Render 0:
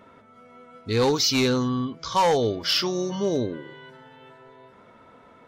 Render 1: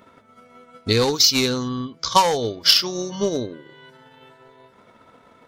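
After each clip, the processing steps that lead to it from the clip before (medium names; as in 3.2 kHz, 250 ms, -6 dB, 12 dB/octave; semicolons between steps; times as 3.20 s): peaking EQ 4.3 kHz +2.5 dB; transient shaper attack +10 dB, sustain -5 dB; treble shelf 5.8 kHz +10 dB; trim -1 dB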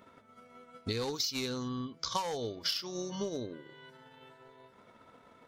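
compression 4:1, threshold -26 dBFS, peak gain reduction 14 dB; trim -7 dB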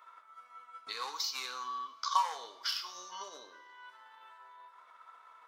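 resonant high-pass 1.1 kHz, resonance Q 4; on a send at -7 dB: reverberation, pre-delay 3 ms; on the sum: trim -3.5 dB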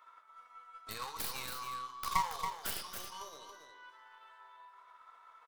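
tracing distortion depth 0.24 ms; delay 278 ms -7 dB; trim -3 dB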